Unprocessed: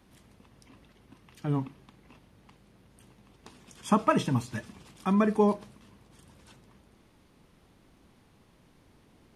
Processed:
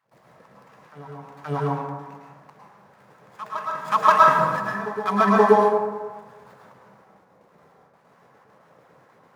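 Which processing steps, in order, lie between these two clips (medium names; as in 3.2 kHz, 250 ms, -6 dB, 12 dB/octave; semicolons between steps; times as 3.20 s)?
median filter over 15 samples; resonant low shelf 210 Hz +13.5 dB, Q 1.5; gate with hold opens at -41 dBFS; LFO high-pass sine 4.4 Hz 480–1600 Hz; reverse echo 528 ms -15 dB; plate-style reverb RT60 1.4 s, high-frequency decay 0.4×, pre-delay 95 ms, DRR -3.5 dB; trim +5.5 dB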